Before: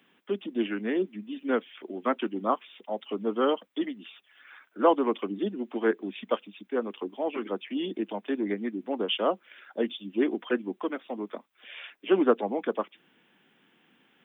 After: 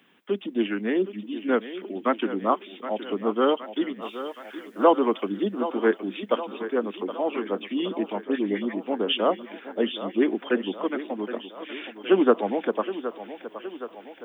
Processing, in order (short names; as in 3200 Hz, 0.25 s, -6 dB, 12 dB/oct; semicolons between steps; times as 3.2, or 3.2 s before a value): 4.01–4.83 added noise white -70 dBFS; 8.24–8.78 dispersion highs, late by 78 ms, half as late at 1700 Hz; thinning echo 0.769 s, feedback 64%, high-pass 210 Hz, level -11.5 dB; gain +3.5 dB